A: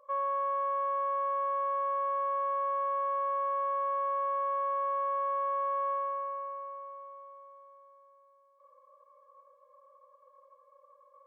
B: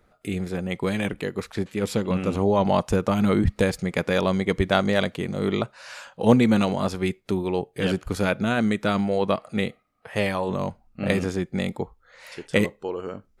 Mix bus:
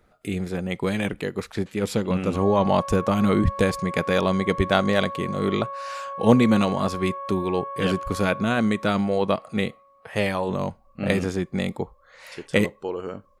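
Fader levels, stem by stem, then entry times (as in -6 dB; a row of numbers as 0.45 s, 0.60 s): -2.5 dB, +0.5 dB; 2.25 s, 0.00 s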